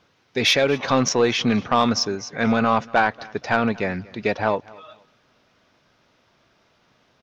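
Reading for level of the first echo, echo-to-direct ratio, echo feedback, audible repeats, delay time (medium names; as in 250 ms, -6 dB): -23.0 dB, -22.5 dB, 29%, 2, 236 ms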